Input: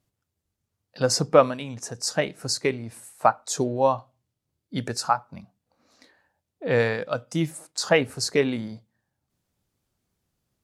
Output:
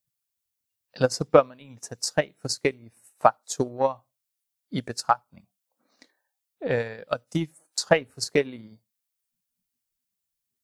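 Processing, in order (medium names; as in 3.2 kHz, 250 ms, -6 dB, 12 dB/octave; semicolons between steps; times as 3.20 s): transient shaper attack +11 dB, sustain -8 dB; added noise blue -58 dBFS; spectral noise reduction 17 dB; trim -8.5 dB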